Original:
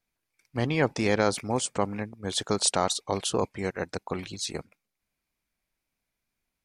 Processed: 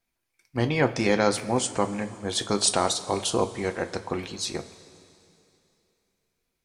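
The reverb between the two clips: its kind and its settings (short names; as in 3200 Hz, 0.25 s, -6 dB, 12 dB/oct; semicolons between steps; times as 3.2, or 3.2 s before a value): two-slope reverb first 0.21 s, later 2.9 s, from -18 dB, DRR 6.5 dB; gain +1.5 dB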